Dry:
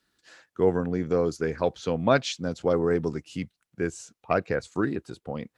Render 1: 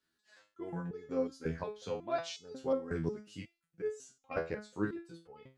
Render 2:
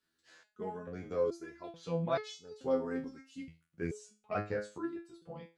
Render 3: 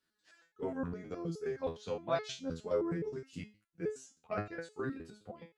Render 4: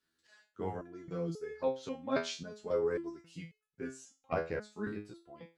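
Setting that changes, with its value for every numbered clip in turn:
step-sequenced resonator, speed: 5.5, 2.3, 9.6, 3.7 Hertz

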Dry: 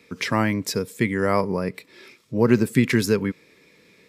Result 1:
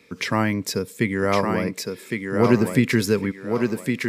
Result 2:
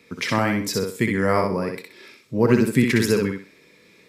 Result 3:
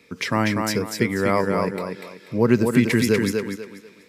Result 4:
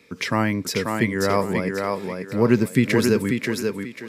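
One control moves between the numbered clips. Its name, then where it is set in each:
feedback echo with a high-pass in the loop, delay time: 1,110, 63, 243, 538 milliseconds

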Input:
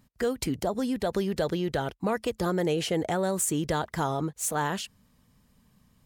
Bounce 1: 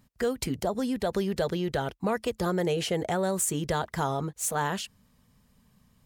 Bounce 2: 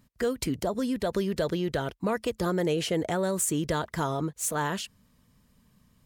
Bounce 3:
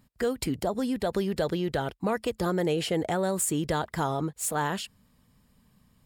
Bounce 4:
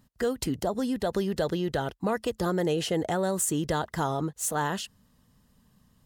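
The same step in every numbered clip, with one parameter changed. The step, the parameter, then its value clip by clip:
notch filter, centre frequency: 310, 790, 6,100, 2,300 Hertz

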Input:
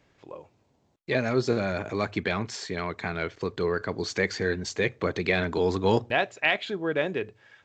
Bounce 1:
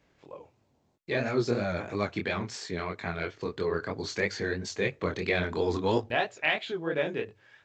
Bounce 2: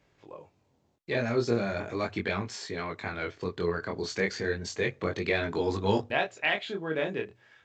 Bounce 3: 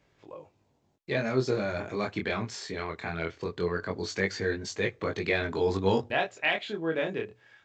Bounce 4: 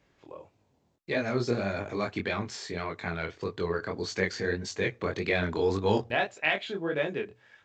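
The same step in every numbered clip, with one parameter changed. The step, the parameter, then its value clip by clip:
chorus effect, speed: 3, 0.36, 0.2, 1.7 Hertz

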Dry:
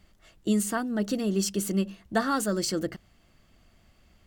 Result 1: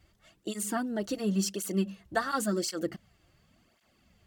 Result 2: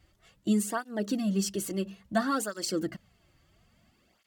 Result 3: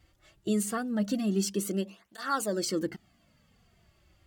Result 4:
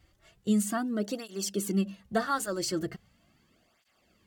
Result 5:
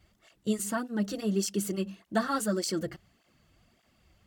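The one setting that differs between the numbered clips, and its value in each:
through-zero flanger with one copy inverted, nulls at: 0.92, 0.59, 0.23, 0.39, 1.7 Hertz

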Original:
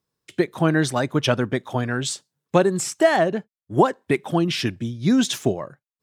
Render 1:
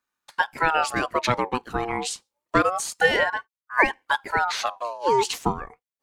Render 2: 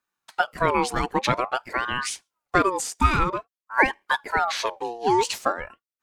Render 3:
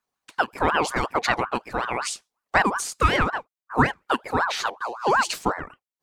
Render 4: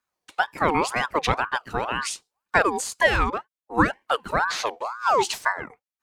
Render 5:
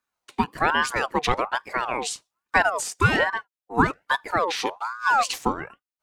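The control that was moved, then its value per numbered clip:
ring modulator whose carrier an LFO sweeps, at: 0.27, 0.5, 5.4, 2, 1.2 Hertz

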